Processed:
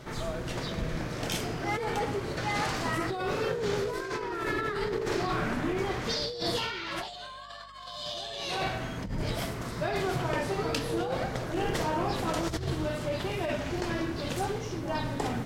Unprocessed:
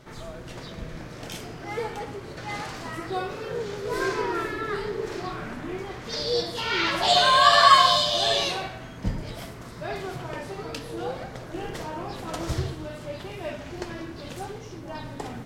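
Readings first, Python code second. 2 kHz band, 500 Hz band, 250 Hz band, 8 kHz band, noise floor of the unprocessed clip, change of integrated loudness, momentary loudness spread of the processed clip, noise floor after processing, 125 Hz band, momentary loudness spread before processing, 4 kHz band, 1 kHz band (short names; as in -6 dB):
-5.5 dB, -2.0 dB, +2.0 dB, -3.5 dB, -41 dBFS, -7.0 dB, 5 LU, -42 dBFS, +1.5 dB, 19 LU, -10.5 dB, -9.0 dB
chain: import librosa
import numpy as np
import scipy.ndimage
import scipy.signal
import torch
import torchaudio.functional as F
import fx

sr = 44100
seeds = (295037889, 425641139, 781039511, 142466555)

y = fx.over_compress(x, sr, threshold_db=-33.0, ratio=-1.0)
y = fx.add_hum(y, sr, base_hz=50, snr_db=28)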